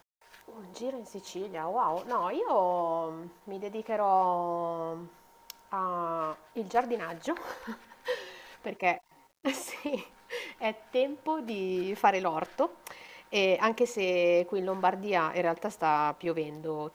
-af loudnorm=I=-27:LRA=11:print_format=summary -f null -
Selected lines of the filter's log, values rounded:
Input Integrated:    -30.5 LUFS
Input True Peak:      -9.9 dBTP
Input LRA:             6.2 LU
Input Threshold:     -41.1 LUFS